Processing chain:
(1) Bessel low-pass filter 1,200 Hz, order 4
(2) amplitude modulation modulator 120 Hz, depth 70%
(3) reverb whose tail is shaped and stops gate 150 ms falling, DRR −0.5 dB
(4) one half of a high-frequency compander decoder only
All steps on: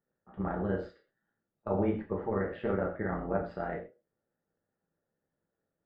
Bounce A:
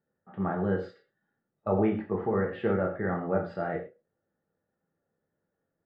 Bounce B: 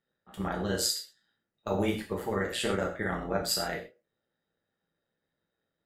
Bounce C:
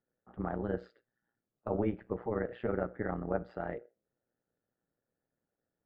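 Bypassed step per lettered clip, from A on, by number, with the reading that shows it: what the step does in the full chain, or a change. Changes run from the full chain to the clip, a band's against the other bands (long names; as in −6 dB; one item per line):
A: 2, change in momentary loudness spread −2 LU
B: 1, 2 kHz band +6.5 dB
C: 3, change in momentary loudness spread −5 LU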